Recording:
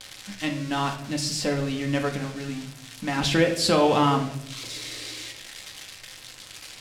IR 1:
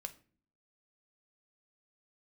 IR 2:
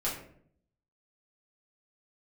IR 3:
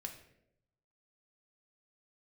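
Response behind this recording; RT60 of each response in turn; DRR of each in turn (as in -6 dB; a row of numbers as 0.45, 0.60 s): 3; not exponential, 0.60 s, 0.80 s; 7.5, -7.0, 2.0 dB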